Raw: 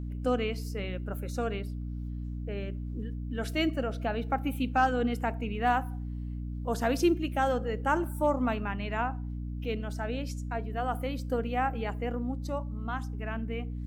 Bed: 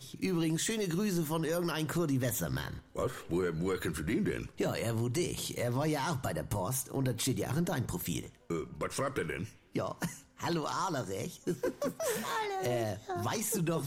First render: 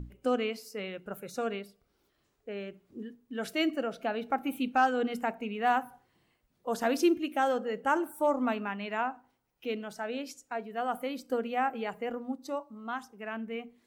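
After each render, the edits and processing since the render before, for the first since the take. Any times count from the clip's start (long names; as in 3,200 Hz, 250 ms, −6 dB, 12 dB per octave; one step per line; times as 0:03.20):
mains-hum notches 60/120/180/240/300 Hz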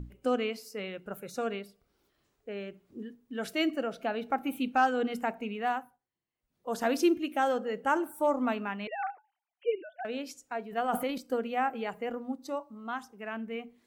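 0:05.51–0:06.80: duck −23 dB, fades 0.47 s linear
0:08.87–0:10.05: three sine waves on the formant tracks
0:10.71–0:11.18: transient designer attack +4 dB, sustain +11 dB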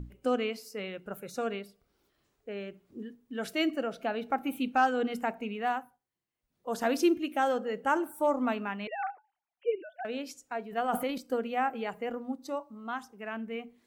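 0:09.09–0:09.80: Bessel low-pass filter 2,400 Hz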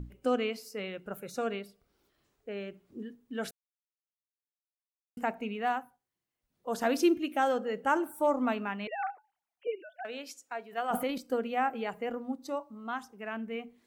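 0:03.51–0:05.17: silence
0:09.67–0:10.91: high-pass filter 660 Hz 6 dB per octave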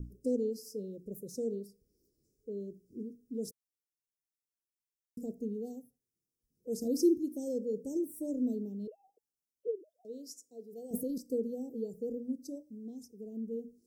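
Chebyshev band-stop filter 470–5,200 Hz, order 4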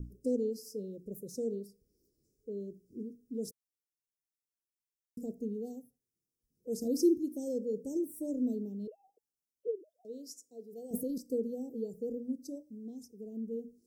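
no processing that can be heard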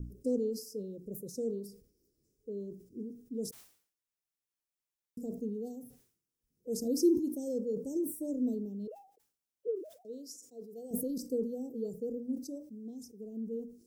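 level that may fall only so fast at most 110 dB per second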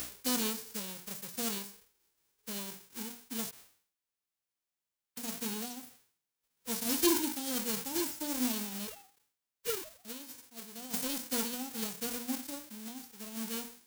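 spectral envelope flattened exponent 0.1
soft clipping −17.5 dBFS, distortion −22 dB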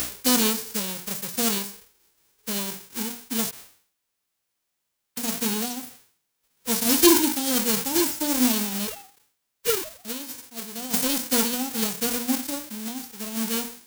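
level +11.5 dB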